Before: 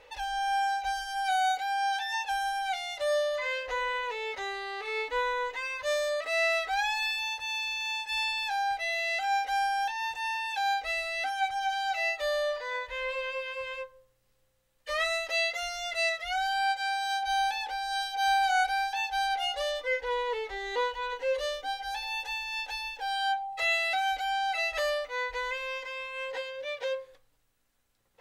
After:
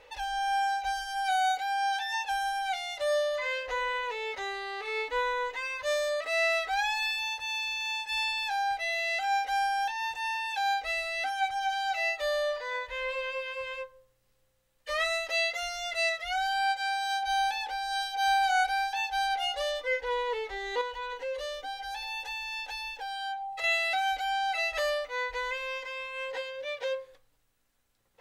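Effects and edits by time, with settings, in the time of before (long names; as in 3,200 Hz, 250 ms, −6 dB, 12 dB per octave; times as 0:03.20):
0:20.81–0:23.64: downward compressor 2.5 to 1, threshold −34 dBFS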